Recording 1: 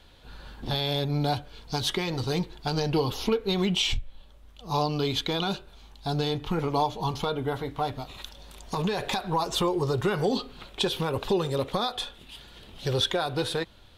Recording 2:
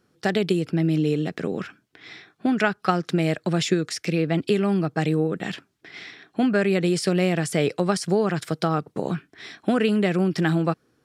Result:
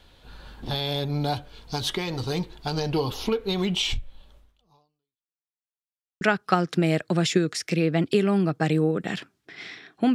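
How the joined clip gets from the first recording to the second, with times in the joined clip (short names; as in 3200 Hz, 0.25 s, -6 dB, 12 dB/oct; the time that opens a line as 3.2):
recording 1
4.38–5.46 fade out exponential
5.46–6.21 mute
6.21 switch to recording 2 from 2.57 s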